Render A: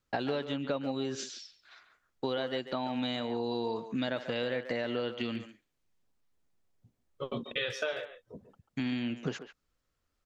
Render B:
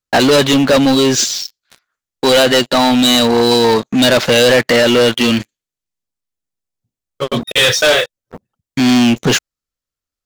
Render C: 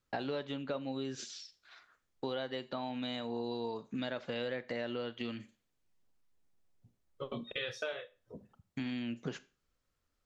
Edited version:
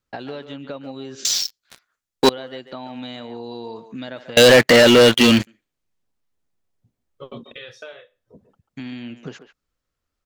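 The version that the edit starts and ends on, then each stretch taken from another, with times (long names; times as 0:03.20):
A
0:01.25–0:02.29: punch in from B
0:04.37–0:05.47: punch in from B
0:07.54–0:08.34: punch in from C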